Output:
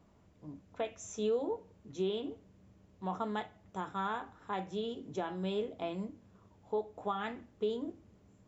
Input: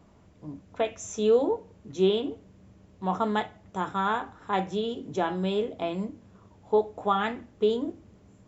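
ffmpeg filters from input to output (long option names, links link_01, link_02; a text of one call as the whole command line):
ffmpeg -i in.wav -af "alimiter=limit=-17dB:level=0:latency=1:release=265,volume=-7.5dB" out.wav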